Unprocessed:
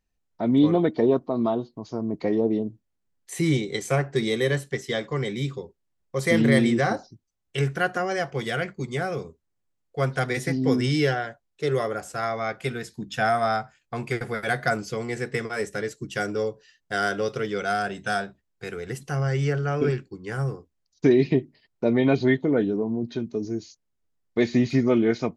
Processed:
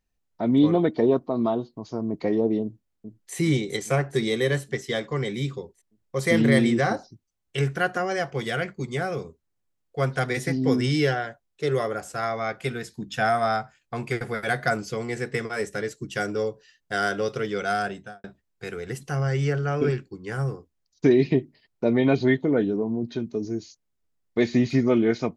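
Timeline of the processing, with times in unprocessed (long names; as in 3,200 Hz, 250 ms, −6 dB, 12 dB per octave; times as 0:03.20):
0:02.63–0:03.35: delay throw 410 ms, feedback 65%, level −8 dB
0:17.84–0:18.24: fade out and dull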